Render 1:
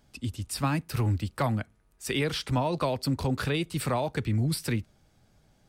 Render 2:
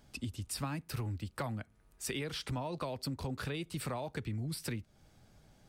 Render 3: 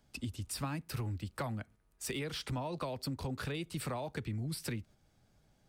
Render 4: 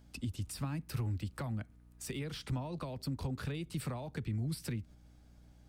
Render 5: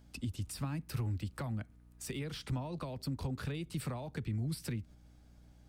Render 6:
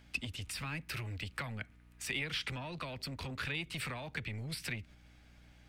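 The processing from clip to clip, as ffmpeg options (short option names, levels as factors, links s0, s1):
-af "acompressor=threshold=0.0126:ratio=4,volume=1.12"
-filter_complex "[0:a]agate=range=0.447:threshold=0.00158:ratio=16:detection=peak,acrossover=split=240|1000[s0][s1][s2];[s2]volume=50.1,asoftclip=hard,volume=0.02[s3];[s0][s1][s3]amix=inputs=3:normalize=0"
-filter_complex "[0:a]acrossover=split=260[s0][s1];[s1]acompressor=threshold=0.00282:ratio=2[s2];[s0][s2]amix=inputs=2:normalize=0,aeval=exprs='val(0)+0.000891*(sin(2*PI*60*n/s)+sin(2*PI*2*60*n/s)/2+sin(2*PI*3*60*n/s)/3+sin(2*PI*4*60*n/s)/4+sin(2*PI*5*60*n/s)/5)':c=same,volume=1.33"
-af anull
-filter_complex "[0:a]equalizer=f=2300:t=o:w=1.7:g=15,acrossover=split=1400[s0][s1];[s0]asoftclip=type=tanh:threshold=0.0133[s2];[s2][s1]amix=inputs=2:normalize=0,volume=0.891"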